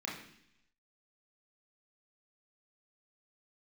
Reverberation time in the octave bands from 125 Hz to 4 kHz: 0.95, 0.90, 0.70, 0.70, 0.95, 0.95 s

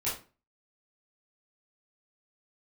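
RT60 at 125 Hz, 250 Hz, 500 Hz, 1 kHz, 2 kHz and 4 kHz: 0.40, 0.40, 0.35, 0.30, 0.30, 0.25 s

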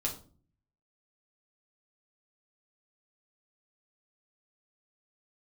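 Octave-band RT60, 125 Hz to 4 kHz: 0.90, 0.65, 0.45, 0.35, 0.30, 0.30 s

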